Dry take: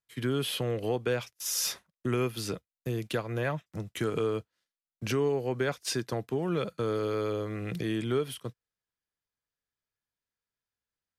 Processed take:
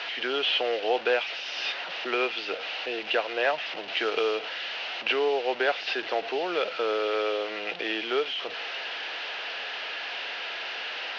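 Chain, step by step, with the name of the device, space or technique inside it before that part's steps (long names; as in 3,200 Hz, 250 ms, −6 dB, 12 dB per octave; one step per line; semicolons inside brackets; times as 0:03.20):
digital answering machine (band-pass filter 390–3,300 Hz; linear delta modulator 32 kbit/s, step −38.5 dBFS; loudspeaker in its box 490–4,400 Hz, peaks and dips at 720 Hz +4 dB, 1,100 Hz −7 dB, 2,800 Hz +9 dB)
0:03.95–0:04.35: high-shelf EQ 6,200 Hz +8.5 dB
level +9 dB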